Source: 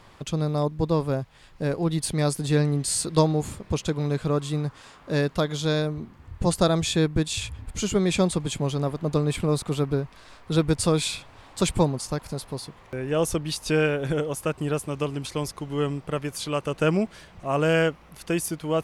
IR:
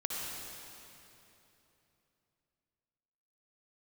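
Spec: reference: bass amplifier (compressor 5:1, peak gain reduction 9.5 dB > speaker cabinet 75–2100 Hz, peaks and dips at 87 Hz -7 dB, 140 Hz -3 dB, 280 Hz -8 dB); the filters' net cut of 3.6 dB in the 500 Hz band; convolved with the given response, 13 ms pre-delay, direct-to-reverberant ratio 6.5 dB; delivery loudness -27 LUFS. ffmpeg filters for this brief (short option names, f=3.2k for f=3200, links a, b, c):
-filter_complex "[0:a]equalizer=f=500:t=o:g=-3.5,asplit=2[a][b];[1:a]atrim=start_sample=2205,adelay=13[c];[b][c]afir=irnorm=-1:irlink=0,volume=-10.5dB[d];[a][d]amix=inputs=2:normalize=0,acompressor=threshold=-23dB:ratio=5,highpass=f=75:w=0.5412,highpass=f=75:w=1.3066,equalizer=f=87:t=q:w=4:g=-7,equalizer=f=140:t=q:w=4:g=-3,equalizer=f=280:t=q:w=4:g=-8,lowpass=f=2.1k:w=0.5412,lowpass=f=2.1k:w=1.3066,volume=5dB"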